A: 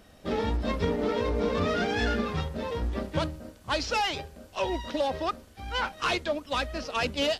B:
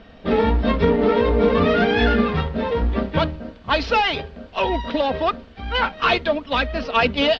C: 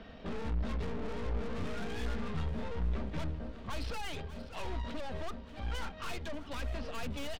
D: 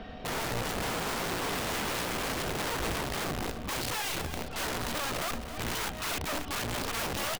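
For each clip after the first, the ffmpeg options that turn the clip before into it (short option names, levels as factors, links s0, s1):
-af "lowpass=f=3900:w=0.5412,lowpass=f=3900:w=1.3066,aecho=1:1:4.4:0.37,volume=2.82"
-filter_complex "[0:a]aeval=exprs='(tanh(22.4*val(0)+0.5)-tanh(0.5))/22.4':c=same,aecho=1:1:587|1174|1761|2348|2935:0.133|0.072|0.0389|0.021|0.0113,acrossover=split=170[s0][s1];[s1]acompressor=threshold=0.00501:ratio=2[s2];[s0][s2]amix=inputs=2:normalize=0,volume=0.75"
-af "aeval=exprs='(mod(56.2*val(0)+1,2)-1)/56.2':c=same,aeval=exprs='val(0)+0.00141*sin(2*PI*740*n/s)':c=same,aecho=1:1:268:0.282,volume=2.11"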